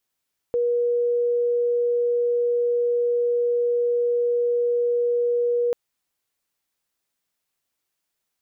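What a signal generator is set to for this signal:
tone sine 480 Hz −18.5 dBFS 5.19 s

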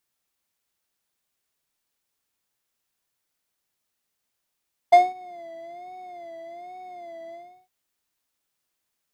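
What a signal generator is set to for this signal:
subtractive patch with vibrato F5, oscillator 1 square, interval +19 semitones, sub −21 dB, noise −14 dB, filter bandpass, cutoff 110 Hz, Q 0.99, filter envelope 3 octaves, filter decay 0.14 s, filter sustain 35%, attack 13 ms, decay 0.20 s, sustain −21 dB, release 0.34 s, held 2.42 s, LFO 1.2 Hz, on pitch 94 cents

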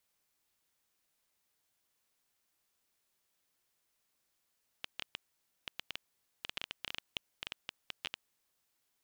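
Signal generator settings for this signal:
Geiger counter clicks 8.8 per second −20.5 dBFS 3.49 s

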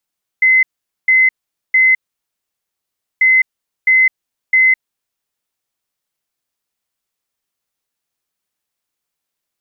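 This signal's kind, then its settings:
beeps in groups sine 2,050 Hz, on 0.21 s, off 0.45 s, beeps 3, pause 1.26 s, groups 2, −7 dBFS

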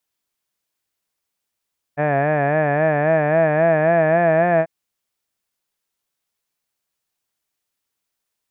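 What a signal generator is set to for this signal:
vowel by formant synthesis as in had, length 2.69 s, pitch 143 Hz, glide +3 semitones, vibrato 3.7 Hz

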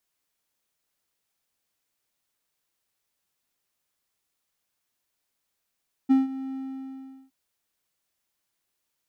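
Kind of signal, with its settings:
note with an ADSR envelope triangle 266 Hz, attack 21 ms, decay 161 ms, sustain −16.5 dB, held 0.45 s, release 766 ms −12 dBFS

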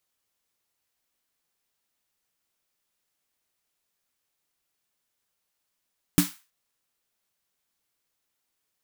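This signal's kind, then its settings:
synth snare length 0.32 s, tones 180 Hz, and 290 Hz, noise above 940 Hz, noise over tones −7.5 dB, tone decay 0.16 s, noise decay 0.33 s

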